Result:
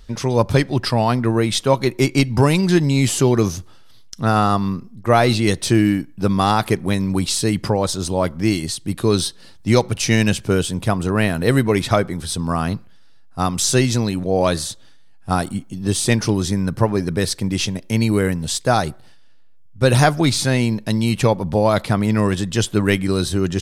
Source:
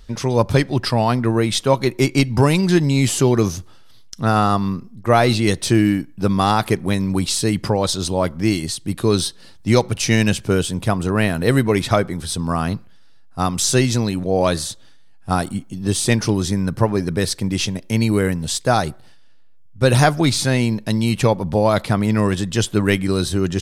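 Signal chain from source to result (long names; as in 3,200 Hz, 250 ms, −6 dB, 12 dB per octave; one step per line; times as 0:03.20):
0:07.66–0:08.10: dynamic equaliser 3,600 Hz, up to −6 dB, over −37 dBFS, Q 1.4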